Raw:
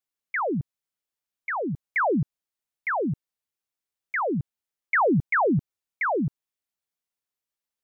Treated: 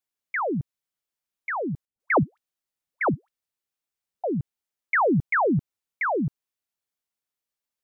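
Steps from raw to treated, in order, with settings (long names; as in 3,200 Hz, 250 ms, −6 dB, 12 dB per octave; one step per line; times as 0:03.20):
0:01.85–0:04.24: all-pass dispersion highs, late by 149 ms, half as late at 490 Hz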